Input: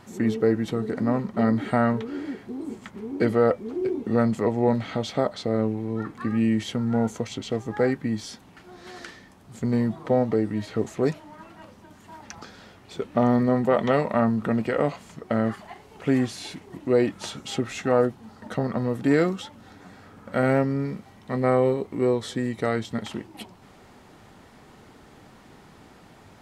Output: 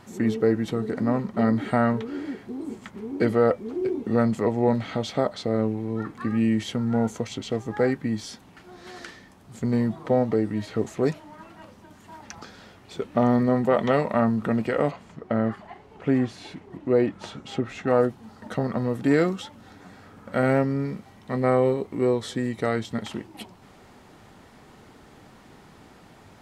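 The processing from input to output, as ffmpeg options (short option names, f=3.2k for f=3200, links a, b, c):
-filter_complex "[0:a]asettb=1/sr,asplit=3[a][b][c];[a]atrim=end=14.914[d];[b]atrim=start=14.91:end=17.88,asetpts=PTS-STARTPTS,afade=t=in:d=0.004:c=qsin,afade=t=out:st=2.966:d=0.004:c=qsin,lowpass=f=2k:p=1[e];[c]atrim=start=17.876[f];[d][e]acrossfade=d=0.004:c1=hsin:c2=qsin[g];[g][f]acrossfade=d=0.004:c1=qsin:c2=hsin"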